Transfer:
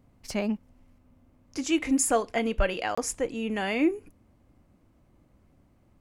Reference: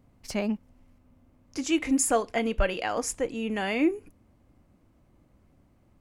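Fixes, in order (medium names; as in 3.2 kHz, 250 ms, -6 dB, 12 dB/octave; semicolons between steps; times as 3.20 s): interpolate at 2.95 s, 25 ms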